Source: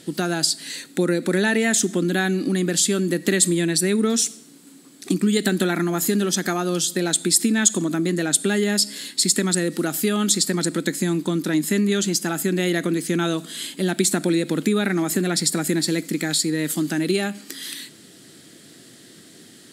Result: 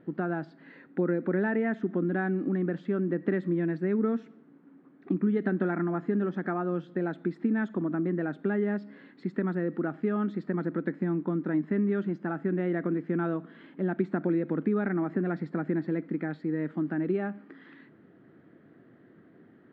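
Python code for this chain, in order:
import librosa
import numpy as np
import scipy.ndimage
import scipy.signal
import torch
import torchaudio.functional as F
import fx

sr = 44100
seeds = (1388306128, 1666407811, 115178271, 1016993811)

y = scipy.signal.sosfilt(scipy.signal.butter(4, 1600.0, 'lowpass', fs=sr, output='sos'), x)
y = y * librosa.db_to_amplitude(-6.5)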